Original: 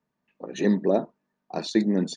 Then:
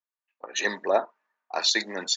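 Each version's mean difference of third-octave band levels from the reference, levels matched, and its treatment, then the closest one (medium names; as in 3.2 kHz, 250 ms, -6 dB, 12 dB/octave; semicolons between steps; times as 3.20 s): 8.0 dB: Chebyshev high-pass 1.2 kHz, order 2; in parallel at +1.5 dB: compression, threshold -43 dBFS, peak gain reduction 13.5 dB; on the sum: resampled via 16 kHz; three bands expanded up and down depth 70%; trim +7.5 dB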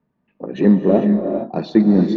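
5.0 dB: bass shelf 430 Hz +8.5 dB; in parallel at -8 dB: saturation -19.5 dBFS, distortion -7 dB; on the sum: distance through air 290 m; gated-style reverb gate 480 ms rising, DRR 4.5 dB; trim +2 dB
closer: second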